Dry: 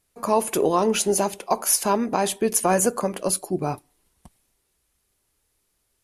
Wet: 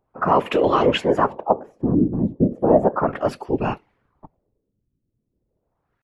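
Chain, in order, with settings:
pitch shifter +1.5 semitones
auto-filter low-pass sine 0.35 Hz 210–2,800 Hz
random phases in short frames
level +2.5 dB

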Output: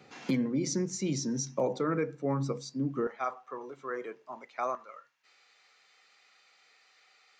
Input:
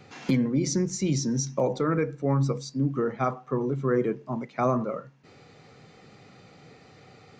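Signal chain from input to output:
high-pass filter 170 Hz 12 dB per octave, from 0:03.07 700 Hz, from 0:04.75 1,500 Hz
level −4 dB

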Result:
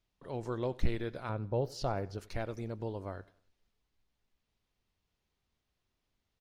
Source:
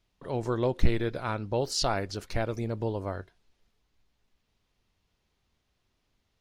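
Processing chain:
0:01.29–0:02.18: graphic EQ with 10 bands 125 Hz +7 dB, 500 Hz +4 dB, 2,000 Hz −5 dB, 4,000 Hz −5 dB, 8,000 Hz −11 dB
repeating echo 93 ms, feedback 41%, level −22 dB
level −7.5 dB

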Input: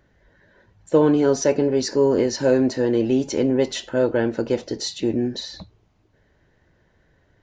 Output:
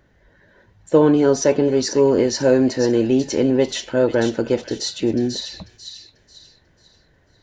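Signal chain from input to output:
delay with a high-pass on its return 492 ms, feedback 34%, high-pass 2,600 Hz, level −6 dB
level +2.5 dB

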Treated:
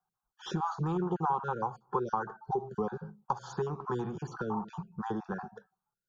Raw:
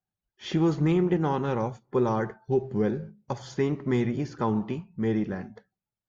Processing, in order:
time-frequency cells dropped at random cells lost 21%
flat-topped bell 1,000 Hz +13.5 dB
downward compressor 3 to 1, threshold −29 dBFS, peak gain reduction 12 dB
phaser with its sweep stopped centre 410 Hz, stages 8

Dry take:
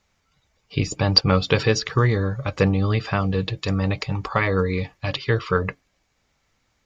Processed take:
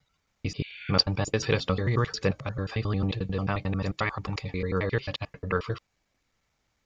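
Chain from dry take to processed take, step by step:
slices reordered back to front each 89 ms, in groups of 5
healed spectral selection 0:00.62–0:00.89, 1,400–4,600 Hz both
level −6.5 dB

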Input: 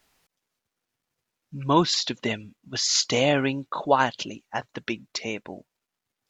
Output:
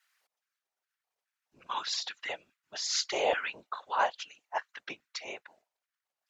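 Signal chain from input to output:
auto-filter high-pass square 2.4 Hz 680–1,500 Hz
random phases in short frames
level −9 dB

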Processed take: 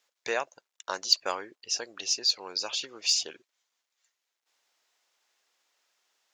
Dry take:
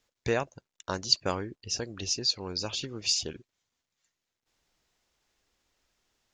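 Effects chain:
high-pass filter 620 Hz 12 dB per octave
in parallel at −9 dB: soft clipping −20.5 dBFS, distortion −10 dB

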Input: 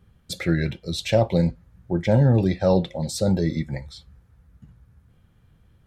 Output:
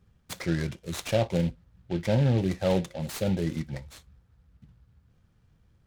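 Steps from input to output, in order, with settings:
short delay modulated by noise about 2,600 Hz, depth 0.046 ms
level −6 dB

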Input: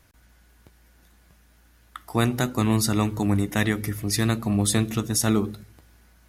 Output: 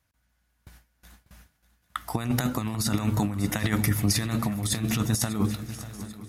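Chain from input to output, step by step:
high-pass filter 44 Hz 12 dB per octave
noise gate with hold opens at −46 dBFS
parametric band 380 Hz −9 dB 0.59 octaves
compressor whose output falls as the input rises −27 dBFS, ratio −0.5
feedback echo with a long and a short gap by turns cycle 791 ms, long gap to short 3 to 1, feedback 43%, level −15 dB
level +2.5 dB

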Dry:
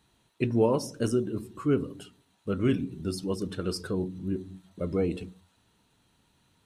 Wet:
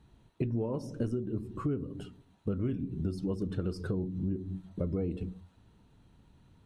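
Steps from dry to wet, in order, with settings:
spectral tilt −3 dB per octave
downward compressor 10 to 1, threshold −29 dBFS, peak gain reduction 16 dB

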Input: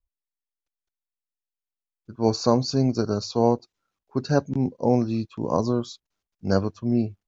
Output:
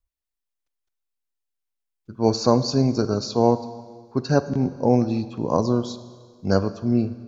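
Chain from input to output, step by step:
four-comb reverb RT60 1.7 s, combs from 33 ms, DRR 13 dB
level +2 dB

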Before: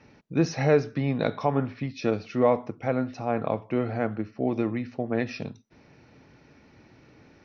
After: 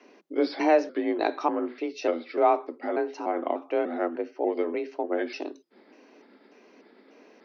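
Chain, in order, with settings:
pitch shifter gated in a rhythm −3.5 semitones, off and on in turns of 296 ms
frequency shifter +160 Hz

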